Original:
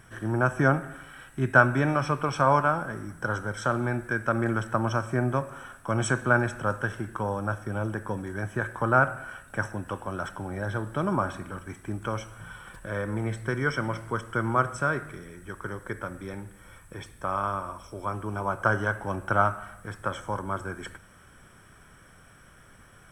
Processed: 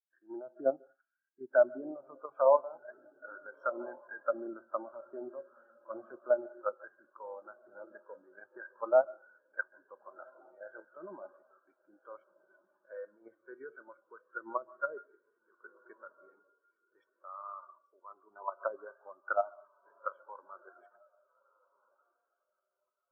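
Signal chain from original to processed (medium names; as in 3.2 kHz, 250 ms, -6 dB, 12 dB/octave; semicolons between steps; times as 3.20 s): low-pass that closes with the level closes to 700 Hz, closed at -20.5 dBFS; high-pass 420 Hz 12 dB/octave; level held to a coarse grid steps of 9 dB; echo that smears into a reverb 1450 ms, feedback 44%, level -8.5 dB; on a send at -12.5 dB: reverberation RT60 0.55 s, pre-delay 122 ms; on the sum: spectral contrast expander 2.5:1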